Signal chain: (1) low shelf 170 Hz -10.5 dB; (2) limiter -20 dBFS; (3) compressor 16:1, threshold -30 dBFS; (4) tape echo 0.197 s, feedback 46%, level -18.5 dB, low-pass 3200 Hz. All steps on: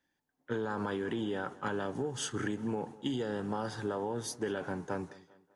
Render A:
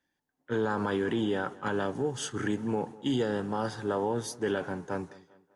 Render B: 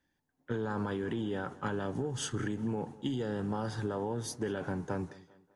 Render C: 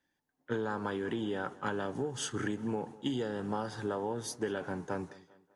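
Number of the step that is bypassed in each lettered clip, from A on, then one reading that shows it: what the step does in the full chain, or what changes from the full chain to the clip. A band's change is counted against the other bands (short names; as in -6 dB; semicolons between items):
3, mean gain reduction 3.5 dB; 1, 125 Hz band +5.5 dB; 2, crest factor change +1.5 dB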